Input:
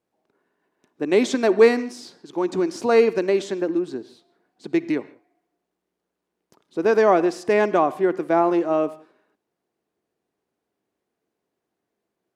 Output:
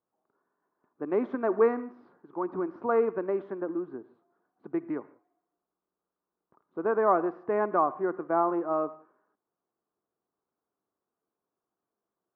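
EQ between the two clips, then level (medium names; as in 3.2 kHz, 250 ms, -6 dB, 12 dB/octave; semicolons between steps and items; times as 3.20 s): four-pole ladder low-pass 1.4 kHz, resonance 55%; 0.0 dB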